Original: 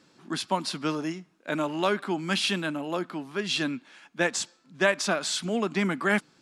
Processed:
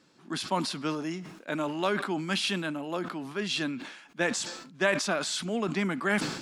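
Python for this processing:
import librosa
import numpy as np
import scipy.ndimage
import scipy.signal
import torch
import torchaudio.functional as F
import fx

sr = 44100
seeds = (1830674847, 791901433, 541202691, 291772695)

y = fx.sustainer(x, sr, db_per_s=64.0)
y = F.gain(torch.from_numpy(y), -3.0).numpy()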